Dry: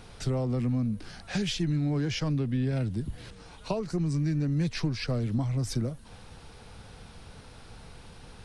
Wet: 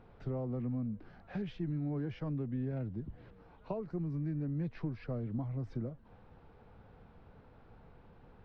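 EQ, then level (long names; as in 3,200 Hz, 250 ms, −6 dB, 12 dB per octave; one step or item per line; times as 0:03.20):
head-to-tape spacing loss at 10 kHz 41 dB
low-shelf EQ 190 Hz −7 dB
high-shelf EQ 3,100 Hz −10 dB
−4.0 dB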